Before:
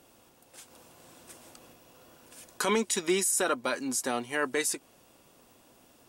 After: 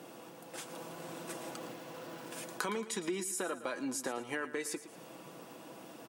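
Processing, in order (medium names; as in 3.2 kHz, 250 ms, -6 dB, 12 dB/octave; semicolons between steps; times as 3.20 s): 1.51–2.39 s: send-on-delta sampling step -56 dBFS; high-pass 140 Hz 24 dB/octave; treble shelf 3.1 kHz -9.5 dB; comb 6.1 ms, depth 39%; in parallel at 0 dB: peak limiter -25 dBFS, peak gain reduction 8.5 dB; on the sum: compression 6:1, threshold -40 dBFS, peak gain reduction 19.5 dB; on a send: feedback delay 113 ms, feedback 40%, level -14 dB; on the sum: trim +4.5 dB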